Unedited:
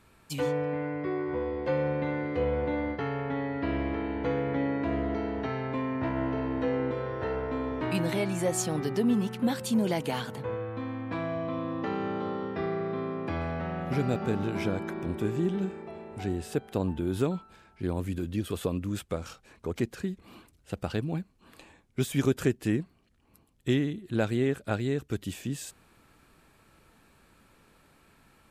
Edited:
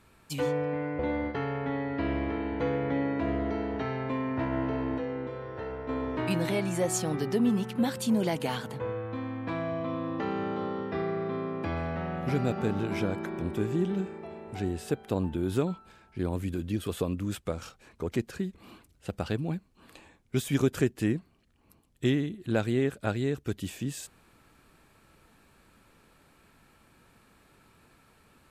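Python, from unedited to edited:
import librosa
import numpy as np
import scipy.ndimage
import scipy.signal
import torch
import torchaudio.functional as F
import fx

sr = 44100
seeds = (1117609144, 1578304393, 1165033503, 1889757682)

y = fx.edit(x, sr, fx.cut(start_s=0.99, length_s=1.64),
    fx.clip_gain(start_s=6.62, length_s=0.91, db=-5.5), tone=tone)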